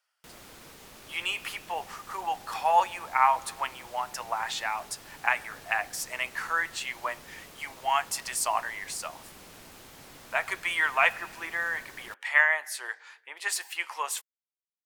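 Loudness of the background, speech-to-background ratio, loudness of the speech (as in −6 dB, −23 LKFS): −48.5 LKFS, 19.5 dB, −29.0 LKFS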